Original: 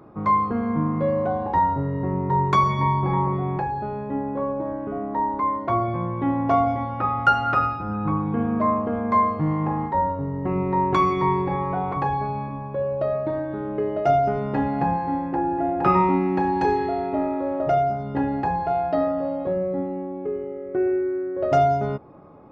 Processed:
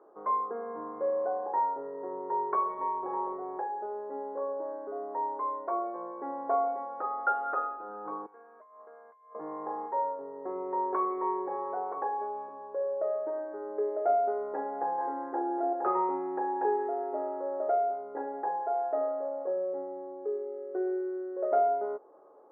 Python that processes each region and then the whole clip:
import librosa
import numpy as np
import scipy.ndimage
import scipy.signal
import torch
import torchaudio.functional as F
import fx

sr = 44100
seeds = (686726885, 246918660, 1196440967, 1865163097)

y = fx.chain(x, sr, fx.differentiator(),
    fx.over_compress(threshold_db=-45.0, ratio=-1.0), at=(8.26, 9.35))
y = fx.chain(y, sr, fx.peak_eq(hz=1400.0, db=4.0, octaves=0.22),
    fx.doubler(ms=26.0, db=-4.0),
    fx.env_flatten(amount_pct=50), at=(14.98, 15.73))
y = scipy.signal.sosfilt(scipy.signal.ellip(3, 1.0, 60, [420.0, 1700.0], 'bandpass', fs=sr, output='sos'), y)
y = fx.tilt_eq(y, sr, slope=-4.0)
y = y * 10.0 ** (-8.5 / 20.0)